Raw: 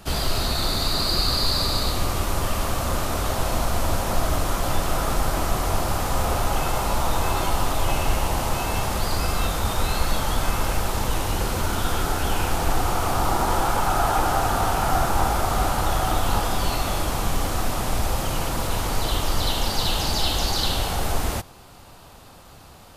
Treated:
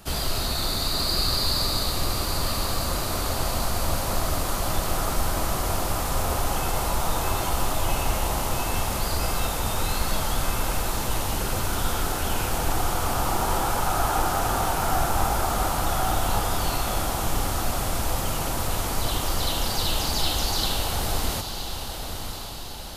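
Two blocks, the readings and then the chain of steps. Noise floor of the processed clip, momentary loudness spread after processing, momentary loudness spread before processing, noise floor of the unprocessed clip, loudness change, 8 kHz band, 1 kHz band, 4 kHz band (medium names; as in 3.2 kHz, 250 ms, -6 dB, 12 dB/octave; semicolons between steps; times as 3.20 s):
-32 dBFS, 3 LU, 4 LU, -46 dBFS, -1.5 dB, +1.0 dB, -2.5 dB, -1.0 dB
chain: treble shelf 6.7 kHz +6 dB; echo that smears into a reverb 1023 ms, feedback 58%, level -8 dB; trim -3.5 dB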